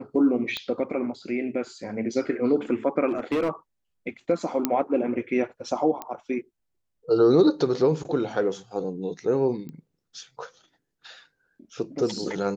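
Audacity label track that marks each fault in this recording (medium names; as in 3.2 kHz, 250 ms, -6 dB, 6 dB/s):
0.570000	0.570000	pop -15 dBFS
3.080000	3.500000	clipped -20.5 dBFS
4.650000	4.650000	pop -8 dBFS
6.020000	6.020000	pop -17 dBFS
9.690000	9.690000	pop -27 dBFS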